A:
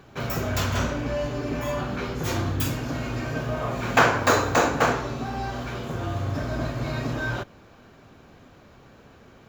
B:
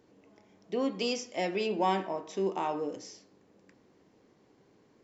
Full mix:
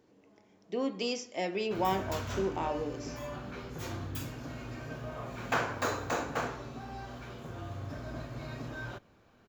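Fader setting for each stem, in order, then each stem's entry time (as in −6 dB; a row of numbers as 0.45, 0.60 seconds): −12.5, −2.0 decibels; 1.55, 0.00 seconds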